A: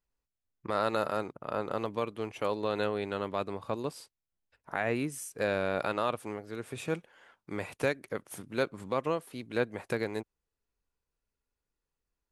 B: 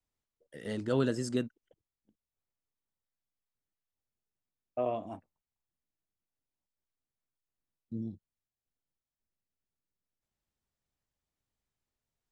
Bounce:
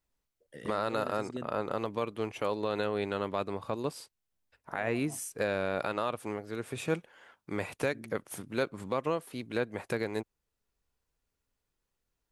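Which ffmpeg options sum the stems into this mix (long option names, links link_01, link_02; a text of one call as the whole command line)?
ffmpeg -i stem1.wav -i stem2.wav -filter_complex "[0:a]volume=2dB,asplit=2[link_01][link_02];[1:a]volume=0dB[link_03];[link_02]apad=whole_len=543231[link_04];[link_03][link_04]sidechaincompress=threshold=-36dB:ratio=4:attack=35:release=720[link_05];[link_01][link_05]amix=inputs=2:normalize=0,alimiter=limit=-18.5dB:level=0:latency=1:release=173" out.wav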